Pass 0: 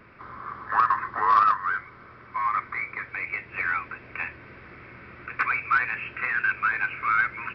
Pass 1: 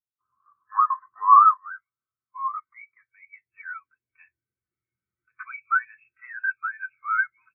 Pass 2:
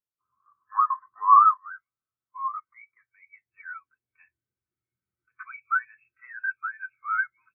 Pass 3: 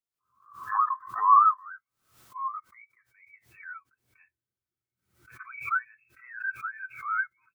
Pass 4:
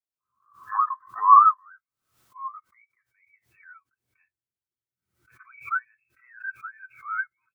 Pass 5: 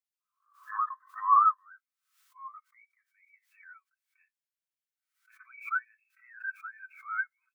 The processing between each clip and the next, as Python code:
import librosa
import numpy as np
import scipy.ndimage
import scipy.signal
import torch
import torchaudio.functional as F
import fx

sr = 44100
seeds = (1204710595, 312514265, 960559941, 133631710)

y1 = fx.spectral_expand(x, sr, expansion=2.5)
y1 = y1 * 10.0 ** (5.5 / 20.0)
y2 = fx.high_shelf(y1, sr, hz=2300.0, db=-9.5)
y3 = fx.pre_swell(y2, sr, db_per_s=110.0)
y3 = y3 * 10.0 ** (-3.0 / 20.0)
y4 = fx.upward_expand(y3, sr, threshold_db=-40.0, expansion=1.5)
y4 = y4 * 10.0 ** (5.5 / 20.0)
y5 = fx.ladder_highpass(y4, sr, hz=1200.0, resonance_pct=20)
y5 = y5 * 10.0 ** (3.0 / 20.0)